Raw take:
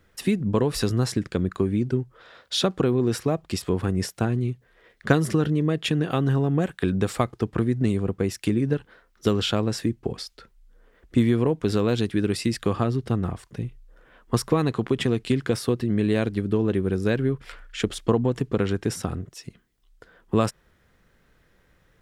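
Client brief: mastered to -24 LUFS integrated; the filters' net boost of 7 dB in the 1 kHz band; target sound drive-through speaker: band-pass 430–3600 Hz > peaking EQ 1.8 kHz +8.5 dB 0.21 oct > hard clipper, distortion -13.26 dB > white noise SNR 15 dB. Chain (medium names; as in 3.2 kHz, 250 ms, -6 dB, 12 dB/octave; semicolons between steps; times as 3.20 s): band-pass 430–3600 Hz; peaking EQ 1 kHz +9 dB; peaking EQ 1.8 kHz +8.5 dB 0.21 oct; hard clipper -15 dBFS; white noise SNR 15 dB; trim +4.5 dB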